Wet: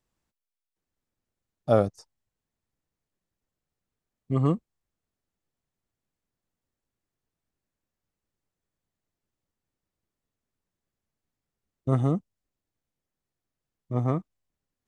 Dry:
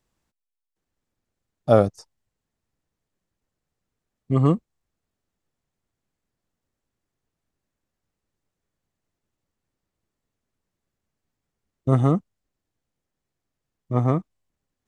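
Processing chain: 12.00–14.06 s: dynamic bell 1.4 kHz, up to -5 dB, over -40 dBFS, Q 0.9; trim -5 dB

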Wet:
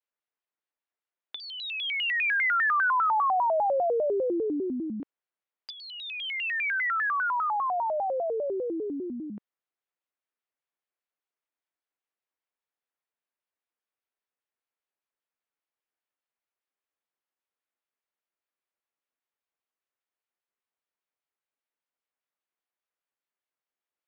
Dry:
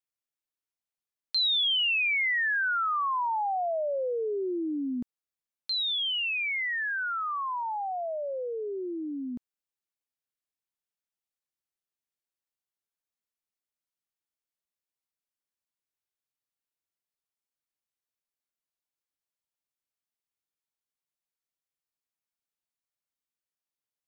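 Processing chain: low-pass that closes with the level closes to 2.2 kHz, closed at -27.5 dBFS; three-band isolator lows -23 dB, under 280 Hz, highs -23 dB, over 3.1 kHz; vibrato with a chosen wave square 5 Hz, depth 250 cents; trim +4.5 dB

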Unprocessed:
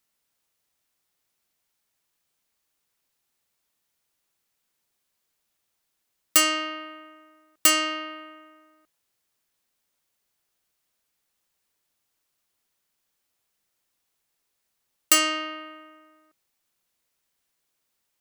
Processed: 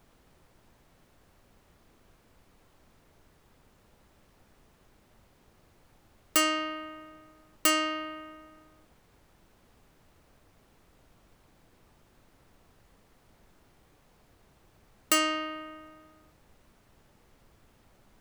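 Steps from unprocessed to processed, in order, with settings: added noise pink -60 dBFS; treble shelf 2 kHz -8.5 dB

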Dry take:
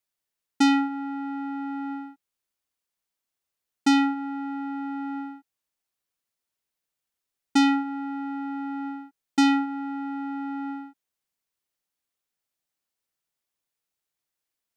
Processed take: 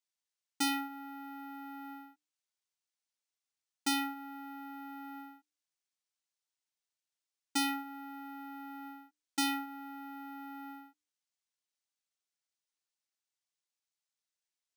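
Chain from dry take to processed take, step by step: RIAA curve recording; feedback comb 300 Hz, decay 0.41 s, harmonics odd, mix 60%; careless resampling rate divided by 3×, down filtered, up hold; trim -2.5 dB

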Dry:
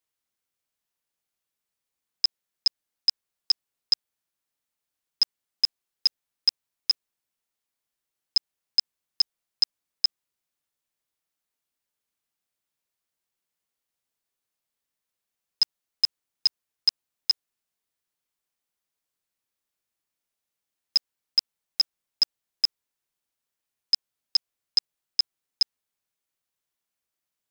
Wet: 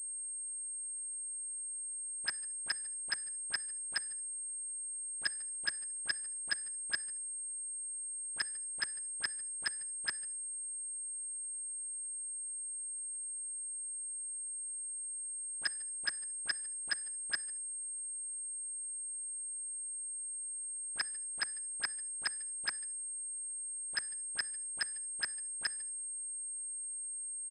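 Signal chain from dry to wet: in parallel at -3 dB: compressor with a negative ratio -25 dBFS, ratio -0.5; on the sum: saturation -26 dBFS, distortion -9 dB; phase dispersion highs, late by 42 ms, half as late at 1.5 kHz; on a send: delay 148 ms -23.5 dB; on the sum: bit crusher 11-bit; simulated room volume 2500 m³, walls furnished, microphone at 0.66 m; class-D stage that switches slowly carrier 8.5 kHz; trim +4.5 dB

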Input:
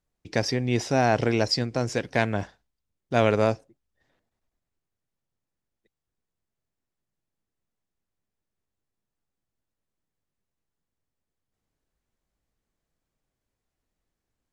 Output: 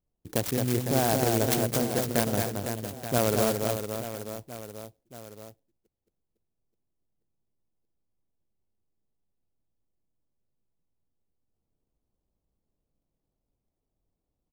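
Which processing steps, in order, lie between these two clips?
local Wiener filter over 25 samples; compression 1.5:1, threshold -27 dBFS, peak gain reduction 4.5 dB; reverse bouncing-ball echo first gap 220 ms, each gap 1.3×, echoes 5; sampling jitter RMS 0.11 ms

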